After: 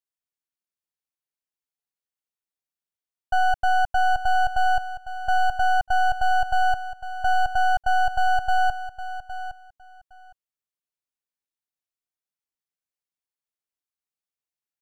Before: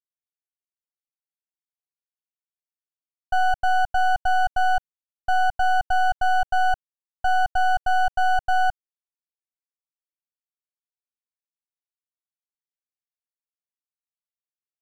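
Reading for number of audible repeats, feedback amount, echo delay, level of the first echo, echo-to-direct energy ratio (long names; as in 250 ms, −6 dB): 2, 16%, 812 ms, −12.5 dB, −12.5 dB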